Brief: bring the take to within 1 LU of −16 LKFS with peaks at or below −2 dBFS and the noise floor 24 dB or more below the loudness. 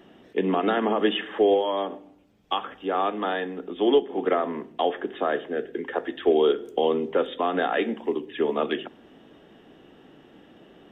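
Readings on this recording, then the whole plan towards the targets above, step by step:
integrated loudness −25.5 LKFS; sample peak −10.0 dBFS; target loudness −16.0 LKFS
→ level +9.5 dB
brickwall limiter −2 dBFS

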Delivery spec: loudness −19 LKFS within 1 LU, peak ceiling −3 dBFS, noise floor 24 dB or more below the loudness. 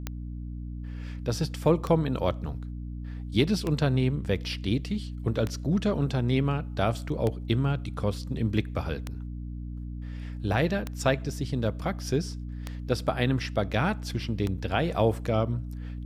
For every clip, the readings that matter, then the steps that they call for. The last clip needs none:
number of clicks 9; mains hum 60 Hz; hum harmonics up to 300 Hz; level of the hum −33 dBFS; integrated loudness −29.0 LKFS; sample peak −9.5 dBFS; target loudness −19.0 LKFS
→ click removal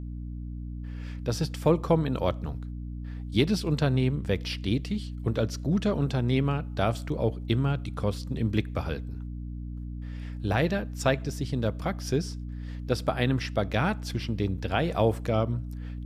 number of clicks 0; mains hum 60 Hz; hum harmonics up to 300 Hz; level of the hum −33 dBFS
→ mains-hum notches 60/120/180/240/300 Hz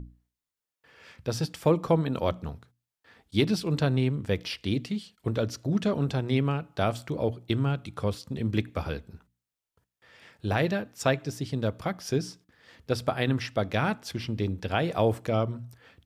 mains hum none found; integrated loudness −29.0 LKFS; sample peak −9.5 dBFS; target loudness −19.0 LKFS
→ level +10 dB
brickwall limiter −3 dBFS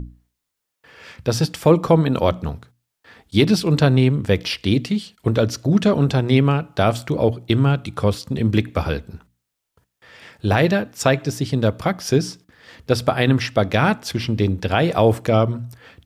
integrated loudness −19.5 LKFS; sample peak −3.0 dBFS; background noise floor −80 dBFS

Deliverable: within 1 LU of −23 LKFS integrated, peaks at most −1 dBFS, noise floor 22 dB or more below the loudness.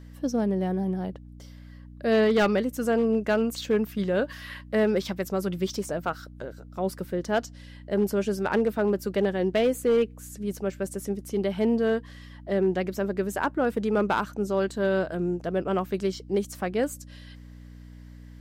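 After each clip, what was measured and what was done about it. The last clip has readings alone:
share of clipped samples 0.7%; peaks flattened at −16.5 dBFS; mains hum 60 Hz; hum harmonics up to 300 Hz; level of the hum −43 dBFS; integrated loudness −27.0 LKFS; sample peak −16.5 dBFS; target loudness −23.0 LKFS
→ clipped peaks rebuilt −16.5 dBFS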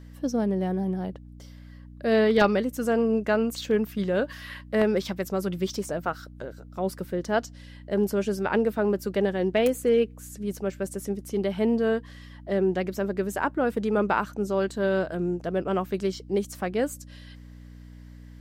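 share of clipped samples 0.0%; mains hum 60 Hz; hum harmonics up to 300 Hz; level of the hum −43 dBFS
→ hum removal 60 Hz, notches 5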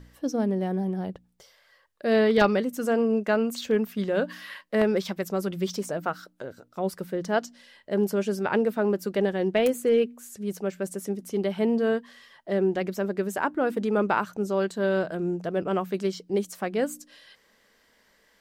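mains hum none found; integrated loudness −27.0 LKFS; sample peak −8.0 dBFS; target loudness −23.0 LKFS
→ level +4 dB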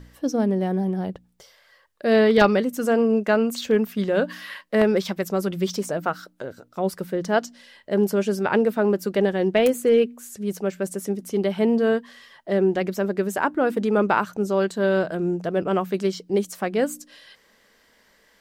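integrated loudness −23.0 LKFS; sample peak −4.0 dBFS; background noise floor −60 dBFS

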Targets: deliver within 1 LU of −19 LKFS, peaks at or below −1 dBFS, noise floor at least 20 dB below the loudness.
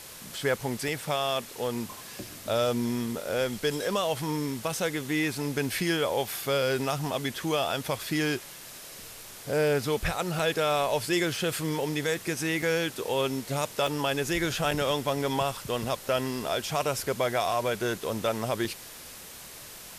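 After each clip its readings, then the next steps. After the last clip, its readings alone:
number of dropouts 6; longest dropout 3.3 ms; background noise floor −45 dBFS; target noise floor −49 dBFS; integrated loudness −29.0 LKFS; sample peak −14.0 dBFS; target loudness −19.0 LKFS
→ repair the gap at 0:00.88/0:10.39/0:12.62/0:13.87/0:14.71/0:18.65, 3.3 ms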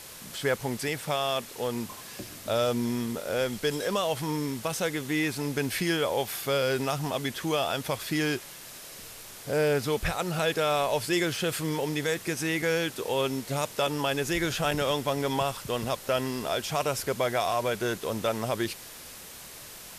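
number of dropouts 0; background noise floor −45 dBFS; target noise floor −49 dBFS
→ broadband denoise 6 dB, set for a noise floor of −45 dBFS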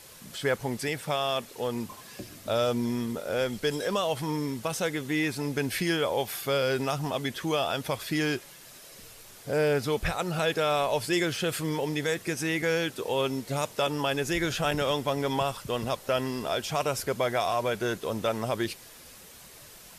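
background noise floor −50 dBFS; integrated loudness −29.0 LKFS; sample peak −14.5 dBFS; target loudness −19.0 LKFS
→ level +10 dB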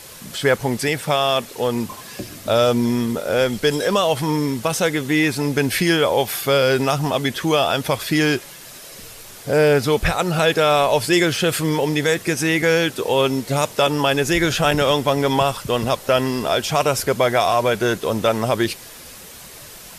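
integrated loudness −19.0 LKFS; sample peak −4.5 dBFS; background noise floor −40 dBFS

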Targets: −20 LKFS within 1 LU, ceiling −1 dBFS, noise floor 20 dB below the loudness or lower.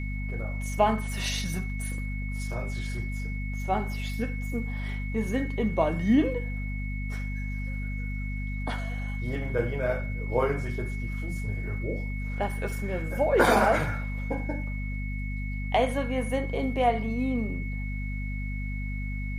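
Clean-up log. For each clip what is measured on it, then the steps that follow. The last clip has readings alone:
mains hum 50 Hz; hum harmonics up to 250 Hz; level of the hum −30 dBFS; interfering tone 2,200 Hz; level of the tone −40 dBFS; integrated loudness −29.5 LKFS; sample peak −8.0 dBFS; target loudness −20.0 LKFS
→ hum removal 50 Hz, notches 5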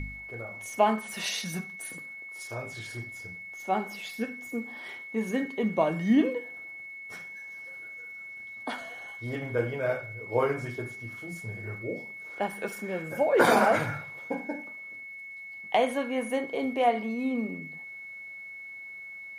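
mains hum none found; interfering tone 2,200 Hz; level of the tone −40 dBFS
→ notch filter 2,200 Hz, Q 30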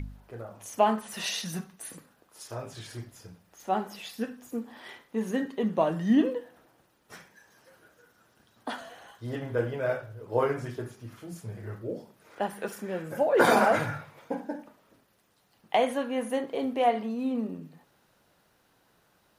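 interfering tone none found; integrated loudness −29.5 LKFS; sample peak −9.0 dBFS; target loudness −20.0 LKFS
→ level +9.5 dB
brickwall limiter −1 dBFS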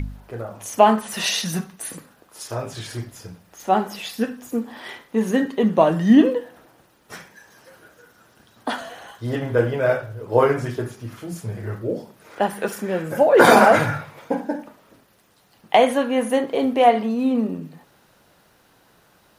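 integrated loudness −20.0 LKFS; sample peak −1.0 dBFS; background noise floor −58 dBFS

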